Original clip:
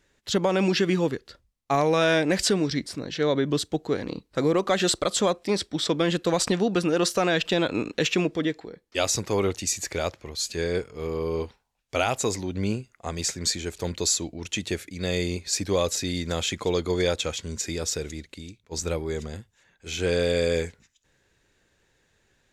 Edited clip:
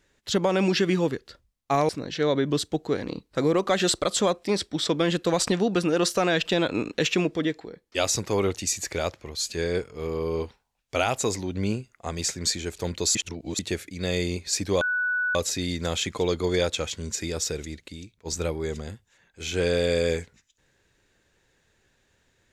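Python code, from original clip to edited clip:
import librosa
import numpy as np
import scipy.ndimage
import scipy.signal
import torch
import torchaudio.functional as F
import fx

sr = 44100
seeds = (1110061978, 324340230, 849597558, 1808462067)

y = fx.edit(x, sr, fx.cut(start_s=1.89, length_s=1.0),
    fx.reverse_span(start_s=14.15, length_s=0.44),
    fx.insert_tone(at_s=15.81, length_s=0.54, hz=1480.0, db=-22.5), tone=tone)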